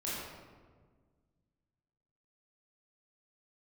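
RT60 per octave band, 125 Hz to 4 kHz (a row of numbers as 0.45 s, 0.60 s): 2.5 s, 2.2 s, 1.7 s, 1.4 s, 1.1 s, 0.85 s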